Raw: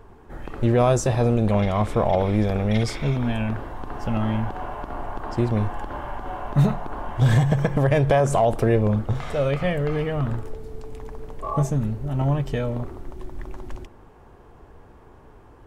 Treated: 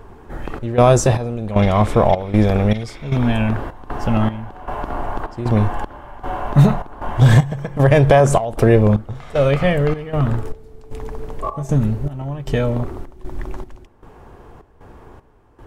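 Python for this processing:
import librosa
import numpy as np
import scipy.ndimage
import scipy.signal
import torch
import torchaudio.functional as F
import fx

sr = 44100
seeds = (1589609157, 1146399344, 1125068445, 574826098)

y = fx.step_gate(x, sr, bpm=77, pattern='xxx.xx..', floor_db=-12.0, edge_ms=4.5)
y = y * librosa.db_to_amplitude(7.0)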